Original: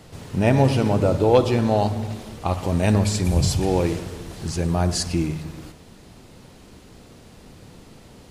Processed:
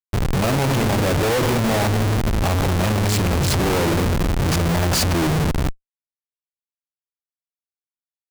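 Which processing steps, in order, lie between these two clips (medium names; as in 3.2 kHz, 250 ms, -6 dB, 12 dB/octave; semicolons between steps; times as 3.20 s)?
in parallel at +1 dB: peak limiter -16.5 dBFS, peak gain reduction 11 dB; on the sum: Schmitt trigger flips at -25.5 dBFS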